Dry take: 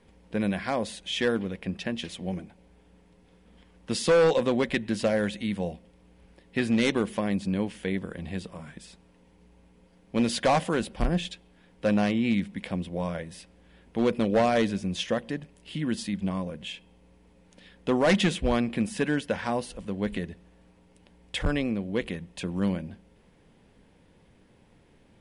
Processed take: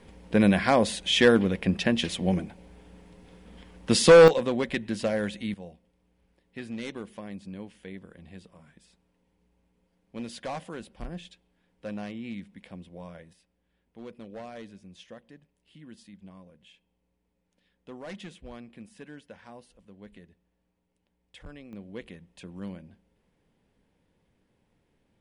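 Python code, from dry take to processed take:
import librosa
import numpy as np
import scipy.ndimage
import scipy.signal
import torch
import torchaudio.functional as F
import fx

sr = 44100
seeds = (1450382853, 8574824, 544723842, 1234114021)

y = fx.gain(x, sr, db=fx.steps((0.0, 7.0), (4.28, -2.5), (5.54, -12.5), (13.33, -19.0), (21.73, -11.5)))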